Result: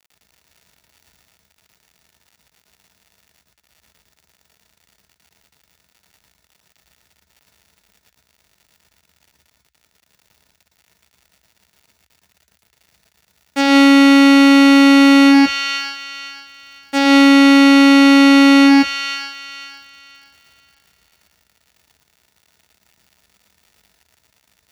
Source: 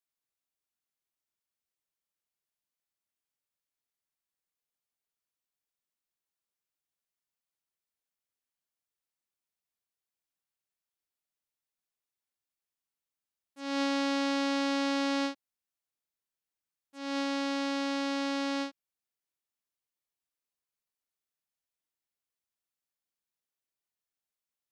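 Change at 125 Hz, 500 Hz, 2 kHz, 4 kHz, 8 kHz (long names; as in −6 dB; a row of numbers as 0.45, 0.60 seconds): can't be measured, +15.5 dB, +22.5 dB, +20.0 dB, +18.5 dB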